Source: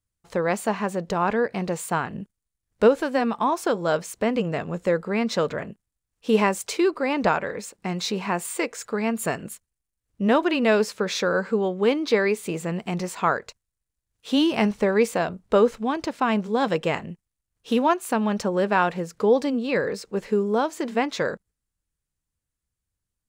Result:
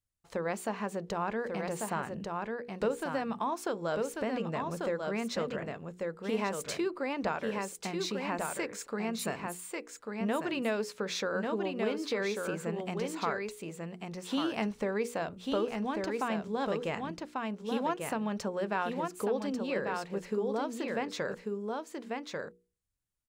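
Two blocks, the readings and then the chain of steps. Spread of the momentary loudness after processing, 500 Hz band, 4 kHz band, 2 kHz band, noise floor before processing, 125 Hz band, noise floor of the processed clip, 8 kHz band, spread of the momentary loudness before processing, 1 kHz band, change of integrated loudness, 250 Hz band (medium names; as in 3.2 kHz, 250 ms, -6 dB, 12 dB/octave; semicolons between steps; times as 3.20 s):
6 LU, -10.0 dB, -8.5 dB, -9.5 dB, -85 dBFS, -9.5 dB, -60 dBFS, -7.5 dB, 8 LU, -9.5 dB, -10.5 dB, -10.0 dB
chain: delay 1142 ms -5.5 dB; compression 2:1, threshold -25 dBFS, peak gain reduction 8 dB; hum notches 60/120/180/240/300/360/420/480 Hz; trim -6.5 dB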